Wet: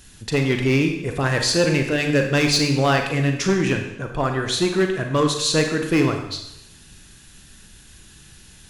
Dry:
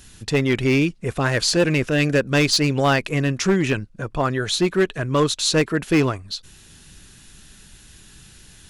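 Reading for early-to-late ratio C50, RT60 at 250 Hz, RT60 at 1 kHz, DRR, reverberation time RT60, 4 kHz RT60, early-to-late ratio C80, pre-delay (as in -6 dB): 6.5 dB, 0.85 s, 0.85 s, 4.0 dB, 0.80 s, 0.85 s, 8.5 dB, 34 ms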